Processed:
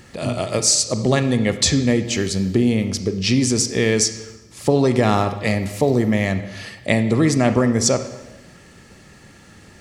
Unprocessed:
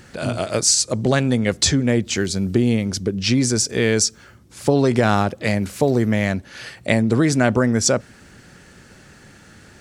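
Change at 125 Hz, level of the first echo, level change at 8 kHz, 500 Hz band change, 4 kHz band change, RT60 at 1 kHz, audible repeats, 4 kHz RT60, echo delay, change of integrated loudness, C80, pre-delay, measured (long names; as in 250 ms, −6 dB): +0.5 dB, no echo audible, 0.0 dB, +0.5 dB, +0.5 dB, 1.0 s, no echo audible, 0.95 s, no echo audible, +0.5 dB, 12.5 dB, 31 ms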